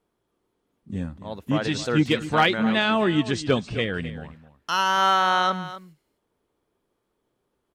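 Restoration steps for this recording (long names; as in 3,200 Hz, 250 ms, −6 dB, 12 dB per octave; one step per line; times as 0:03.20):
clipped peaks rebuilt −9.5 dBFS
echo removal 259 ms −14.5 dB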